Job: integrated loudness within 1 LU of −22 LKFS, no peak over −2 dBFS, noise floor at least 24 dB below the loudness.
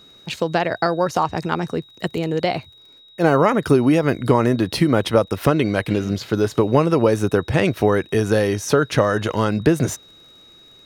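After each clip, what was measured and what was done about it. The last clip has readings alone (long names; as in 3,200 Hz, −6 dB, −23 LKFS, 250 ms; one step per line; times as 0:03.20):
crackle rate 29 per second; interfering tone 3,800 Hz; level of the tone −46 dBFS; integrated loudness −19.5 LKFS; sample peak −3.0 dBFS; target loudness −22.0 LKFS
→ click removal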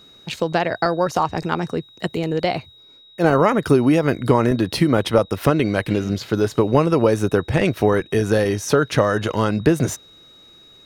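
crackle rate 0.74 per second; interfering tone 3,800 Hz; level of the tone −46 dBFS
→ notch filter 3,800 Hz, Q 30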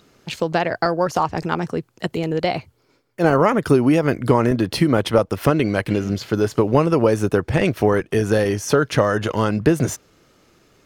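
interfering tone none found; integrated loudness −19.5 LKFS; sample peak −3.0 dBFS; target loudness −22.0 LKFS
→ level −2.5 dB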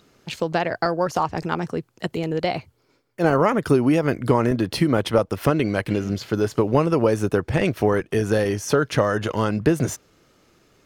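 integrated loudness −22.0 LKFS; sample peak −5.5 dBFS; background noise floor −65 dBFS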